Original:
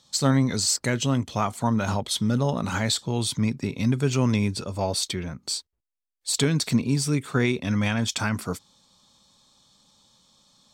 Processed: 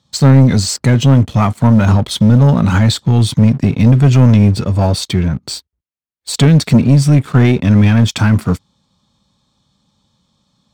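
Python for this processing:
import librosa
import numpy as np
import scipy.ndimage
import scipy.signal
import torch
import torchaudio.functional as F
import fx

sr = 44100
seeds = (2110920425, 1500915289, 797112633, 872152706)

y = scipy.signal.sosfilt(scipy.signal.butter(2, 41.0, 'highpass', fs=sr, output='sos'), x)
y = fx.bass_treble(y, sr, bass_db=10, treble_db=-8)
y = fx.leveller(y, sr, passes=2)
y = F.gain(torch.from_numpy(y), 3.0).numpy()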